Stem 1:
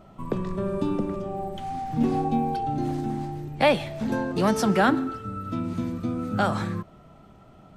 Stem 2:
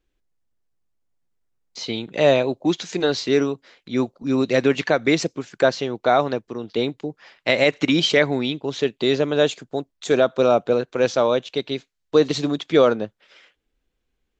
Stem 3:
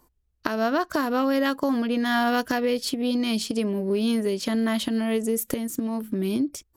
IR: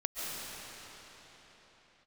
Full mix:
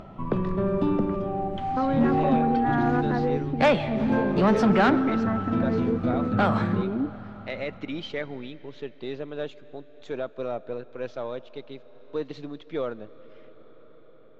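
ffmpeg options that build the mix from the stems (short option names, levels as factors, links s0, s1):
-filter_complex "[0:a]volume=1.33,asplit=2[s0][s1];[s1]volume=0.106[s2];[1:a]aeval=exprs='if(lt(val(0),0),0.708*val(0),val(0))':c=same,volume=0.211,asplit=3[s3][s4][s5];[s4]volume=0.075[s6];[2:a]lowpass=f=1700:w=0.5412,lowpass=f=1700:w=1.3066,adelay=600,volume=0.75[s7];[s5]apad=whole_len=324612[s8];[s7][s8]sidechaingate=range=0.0224:threshold=0.00141:ratio=16:detection=peak[s9];[3:a]atrim=start_sample=2205[s10];[s2][s6]amix=inputs=2:normalize=0[s11];[s11][s10]afir=irnorm=-1:irlink=0[s12];[s0][s3][s9][s12]amix=inputs=4:normalize=0,lowpass=3000,acompressor=mode=upward:threshold=0.0112:ratio=2.5,asoftclip=type=tanh:threshold=0.224"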